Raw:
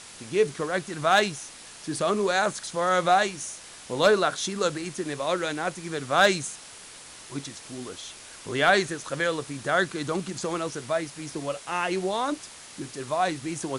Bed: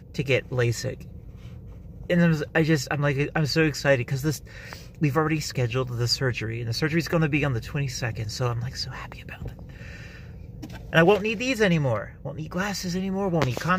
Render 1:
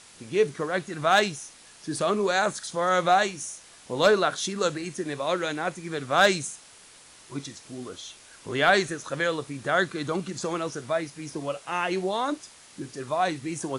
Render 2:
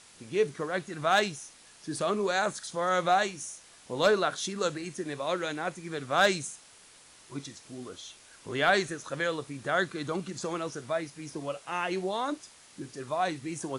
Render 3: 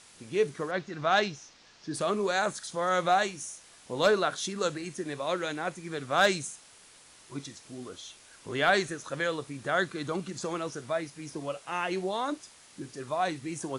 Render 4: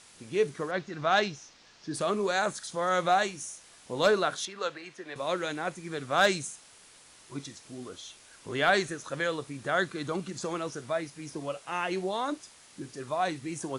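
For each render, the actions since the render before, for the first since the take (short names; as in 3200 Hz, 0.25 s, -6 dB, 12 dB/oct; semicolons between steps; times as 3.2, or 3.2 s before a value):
noise print and reduce 6 dB
gain -4 dB
0.71–1.94 Chebyshev low-pass 5600 Hz, order 3
4.45–5.16 three-band isolator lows -15 dB, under 470 Hz, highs -19 dB, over 4700 Hz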